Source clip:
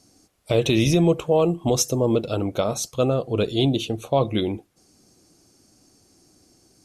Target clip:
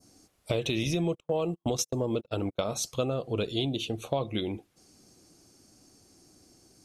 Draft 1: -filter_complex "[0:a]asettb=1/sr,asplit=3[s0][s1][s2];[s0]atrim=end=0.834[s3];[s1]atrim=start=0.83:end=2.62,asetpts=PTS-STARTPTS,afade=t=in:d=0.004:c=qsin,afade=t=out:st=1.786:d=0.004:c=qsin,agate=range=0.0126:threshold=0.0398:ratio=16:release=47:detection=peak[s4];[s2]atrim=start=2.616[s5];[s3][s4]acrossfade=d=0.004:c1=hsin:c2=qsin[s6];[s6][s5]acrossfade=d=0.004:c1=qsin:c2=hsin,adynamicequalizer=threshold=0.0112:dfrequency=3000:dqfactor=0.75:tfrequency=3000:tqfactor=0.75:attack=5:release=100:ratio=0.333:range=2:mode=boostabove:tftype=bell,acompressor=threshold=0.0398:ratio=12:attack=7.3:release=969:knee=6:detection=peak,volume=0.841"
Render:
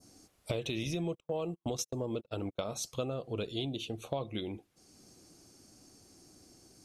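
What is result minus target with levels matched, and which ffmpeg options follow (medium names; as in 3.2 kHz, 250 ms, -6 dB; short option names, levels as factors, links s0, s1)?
compression: peak gain reduction +6.5 dB
-filter_complex "[0:a]asettb=1/sr,asplit=3[s0][s1][s2];[s0]atrim=end=0.834[s3];[s1]atrim=start=0.83:end=2.62,asetpts=PTS-STARTPTS,afade=t=in:d=0.004:c=qsin,afade=t=out:st=1.786:d=0.004:c=qsin,agate=range=0.0126:threshold=0.0398:ratio=16:release=47:detection=peak[s4];[s2]atrim=start=2.616[s5];[s3][s4]acrossfade=d=0.004:c1=hsin:c2=qsin[s6];[s6][s5]acrossfade=d=0.004:c1=qsin:c2=hsin,adynamicequalizer=threshold=0.0112:dfrequency=3000:dqfactor=0.75:tfrequency=3000:tqfactor=0.75:attack=5:release=100:ratio=0.333:range=2:mode=boostabove:tftype=bell,acompressor=threshold=0.0891:ratio=12:attack=7.3:release=969:knee=6:detection=peak,volume=0.841"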